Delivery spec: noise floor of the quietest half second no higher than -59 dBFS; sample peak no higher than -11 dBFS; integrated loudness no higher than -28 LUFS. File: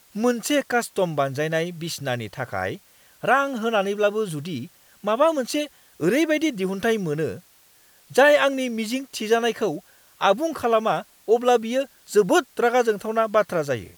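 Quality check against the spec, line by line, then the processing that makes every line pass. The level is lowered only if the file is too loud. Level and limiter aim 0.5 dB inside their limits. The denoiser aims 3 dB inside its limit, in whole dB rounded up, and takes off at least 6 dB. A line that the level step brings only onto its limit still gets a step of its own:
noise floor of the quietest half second -56 dBFS: fail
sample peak -5.0 dBFS: fail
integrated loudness -22.5 LUFS: fail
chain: trim -6 dB; peak limiter -11.5 dBFS

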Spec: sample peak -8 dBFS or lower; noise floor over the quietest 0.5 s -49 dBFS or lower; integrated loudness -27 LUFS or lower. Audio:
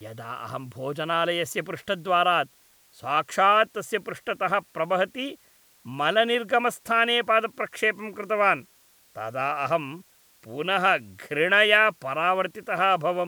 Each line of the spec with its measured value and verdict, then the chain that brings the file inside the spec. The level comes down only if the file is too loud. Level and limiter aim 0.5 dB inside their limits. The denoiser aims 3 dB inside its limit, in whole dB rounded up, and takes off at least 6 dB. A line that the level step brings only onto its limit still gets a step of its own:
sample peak -4.5 dBFS: fail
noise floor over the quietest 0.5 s -59 dBFS: pass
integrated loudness -24.0 LUFS: fail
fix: trim -3.5 dB; peak limiter -8.5 dBFS

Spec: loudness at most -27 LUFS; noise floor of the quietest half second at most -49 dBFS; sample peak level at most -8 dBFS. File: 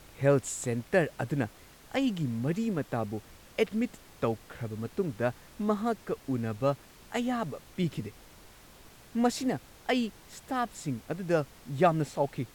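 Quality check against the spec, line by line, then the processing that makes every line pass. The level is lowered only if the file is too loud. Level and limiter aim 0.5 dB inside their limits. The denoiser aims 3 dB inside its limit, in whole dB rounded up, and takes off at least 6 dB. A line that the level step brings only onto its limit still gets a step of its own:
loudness -31.5 LUFS: pass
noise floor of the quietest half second -53 dBFS: pass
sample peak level -12.5 dBFS: pass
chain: none needed

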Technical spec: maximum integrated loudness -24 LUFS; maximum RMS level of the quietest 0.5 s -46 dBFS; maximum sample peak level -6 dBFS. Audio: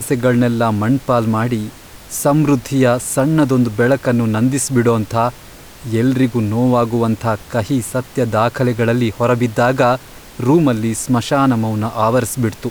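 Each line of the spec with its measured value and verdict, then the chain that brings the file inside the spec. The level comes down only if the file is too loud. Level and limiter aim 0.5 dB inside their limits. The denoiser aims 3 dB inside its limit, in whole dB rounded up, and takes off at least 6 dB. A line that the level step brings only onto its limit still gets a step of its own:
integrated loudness -16.0 LUFS: fail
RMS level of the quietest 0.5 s -38 dBFS: fail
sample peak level -3.0 dBFS: fail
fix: trim -8.5 dB

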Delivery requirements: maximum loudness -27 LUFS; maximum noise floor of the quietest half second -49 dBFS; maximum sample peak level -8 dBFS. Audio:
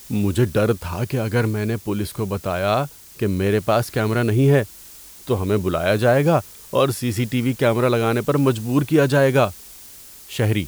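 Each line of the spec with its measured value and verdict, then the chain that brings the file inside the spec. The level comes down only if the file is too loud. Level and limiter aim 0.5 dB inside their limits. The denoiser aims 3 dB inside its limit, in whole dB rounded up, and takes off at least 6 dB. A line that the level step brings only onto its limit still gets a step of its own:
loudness -20.0 LUFS: fail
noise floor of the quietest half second -42 dBFS: fail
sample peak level -5.0 dBFS: fail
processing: trim -7.5 dB

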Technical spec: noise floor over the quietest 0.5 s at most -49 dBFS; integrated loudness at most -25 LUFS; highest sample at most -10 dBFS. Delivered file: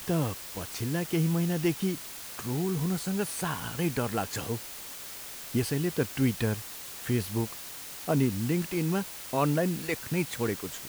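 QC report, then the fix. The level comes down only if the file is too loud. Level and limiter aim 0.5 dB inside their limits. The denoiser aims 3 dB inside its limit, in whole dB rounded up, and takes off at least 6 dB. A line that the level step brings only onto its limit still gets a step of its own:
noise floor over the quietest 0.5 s -42 dBFS: fail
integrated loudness -30.5 LUFS: pass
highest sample -14.0 dBFS: pass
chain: noise reduction 10 dB, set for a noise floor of -42 dBFS

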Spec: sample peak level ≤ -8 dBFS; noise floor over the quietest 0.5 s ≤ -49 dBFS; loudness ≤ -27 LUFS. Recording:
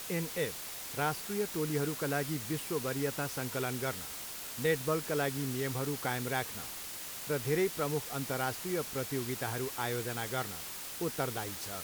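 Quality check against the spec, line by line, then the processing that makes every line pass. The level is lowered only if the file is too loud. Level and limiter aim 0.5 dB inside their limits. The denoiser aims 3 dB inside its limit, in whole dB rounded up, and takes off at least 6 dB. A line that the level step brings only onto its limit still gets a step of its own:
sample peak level -17.5 dBFS: pass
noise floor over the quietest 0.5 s -43 dBFS: fail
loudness -34.5 LUFS: pass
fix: noise reduction 9 dB, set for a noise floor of -43 dBFS

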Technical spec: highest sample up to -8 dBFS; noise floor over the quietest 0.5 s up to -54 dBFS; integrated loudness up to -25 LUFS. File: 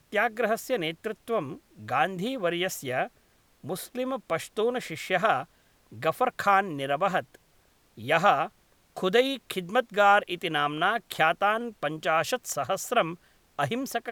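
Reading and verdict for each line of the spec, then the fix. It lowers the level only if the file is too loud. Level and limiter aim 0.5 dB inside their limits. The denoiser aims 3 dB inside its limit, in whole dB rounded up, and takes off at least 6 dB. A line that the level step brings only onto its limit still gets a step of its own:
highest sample -7.5 dBFS: fail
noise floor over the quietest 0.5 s -64 dBFS: pass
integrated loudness -27.0 LUFS: pass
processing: peak limiter -8.5 dBFS

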